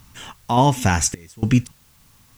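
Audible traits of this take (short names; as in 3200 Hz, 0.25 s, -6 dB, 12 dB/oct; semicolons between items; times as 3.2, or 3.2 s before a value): random-step tremolo, depth 95%; a quantiser's noise floor 10-bit, dither triangular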